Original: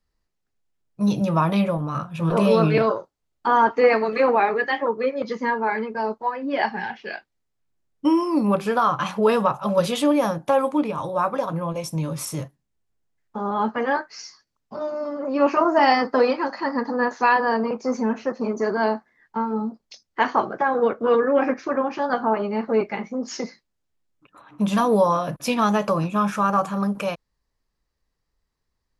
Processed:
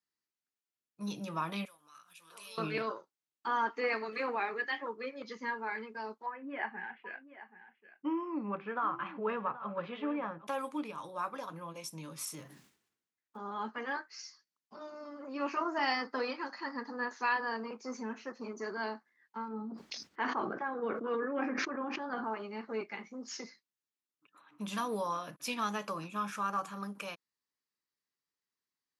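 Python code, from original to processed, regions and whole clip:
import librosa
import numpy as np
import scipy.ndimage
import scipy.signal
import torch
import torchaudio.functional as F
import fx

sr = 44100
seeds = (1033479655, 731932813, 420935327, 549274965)

y = fx.chain(x, sr, fx.differentiator(),
    fx.pre_swell(db_per_s=92.0), at=(1.65, 2.58))
y = fx.chain(y, sr, fx.cheby2_lowpass(hz=11000.0, order=4, stop_db=80),
    fx.echo_single(ms=780, db=-14.5), at=(6.26, 10.47))
y = fx.chain(y, sr, fx.block_float(bits=7),
    fx.high_shelf(hz=4500.0, db=-6.0),
    fx.sustainer(db_per_s=57.0), at=(12.35, 13.39))
y = fx.chain(y, sr, fx.lowpass(hz=1500.0, slope=6),
    fx.low_shelf(hz=270.0, db=4.5),
    fx.sustainer(db_per_s=38.0), at=(19.48, 22.24))
y = scipy.signal.sosfilt(scipy.signal.butter(2, 320.0, 'highpass', fs=sr, output='sos'), y)
y = fx.peak_eq(y, sr, hz=610.0, db=-11.0, octaves=1.4)
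y = y * 10.0 ** (-8.5 / 20.0)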